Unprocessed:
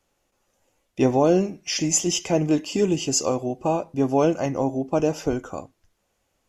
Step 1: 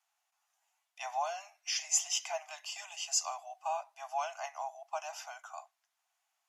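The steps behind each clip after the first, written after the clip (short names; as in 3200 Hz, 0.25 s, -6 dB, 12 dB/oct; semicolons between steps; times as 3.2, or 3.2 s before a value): steep high-pass 670 Hz 96 dB/oct; gain -7.5 dB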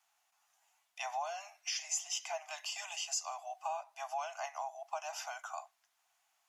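compressor 2.5:1, threshold -44 dBFS, peak gain reduction 13.5 dB; gain +5 dB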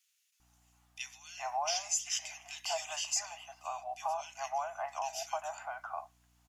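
hum 60 Hz, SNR 31 dB; bands offset in time highs, lows 0.4 s, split 2100 Hz; gain +3.5 dB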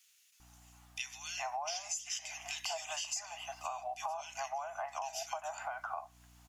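compressor 5:1, threshold -46 dBFS, peak gain reduction 16.5 dB; gain +8.5 dB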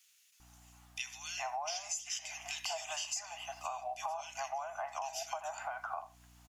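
speakerphone echo 80 ms, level -16 dB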